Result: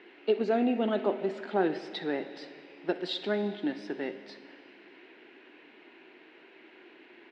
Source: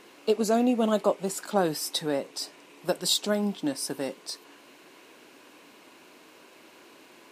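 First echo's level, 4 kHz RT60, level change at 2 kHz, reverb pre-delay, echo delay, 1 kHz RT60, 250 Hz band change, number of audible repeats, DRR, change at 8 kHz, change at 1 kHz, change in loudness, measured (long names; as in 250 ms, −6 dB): −18.5 dB, 2.2 s, 0.0 dB, 5 ms, 63 ms, 2.4 s, −3.0 dB, 1, 10.5 dB, below −25 dB, −4.0 dB, −3.5 dB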